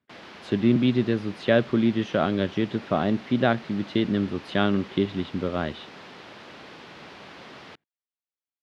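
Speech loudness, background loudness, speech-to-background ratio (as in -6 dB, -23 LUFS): -25.0 LUFS, -43.5 LUFS, 18.5 dB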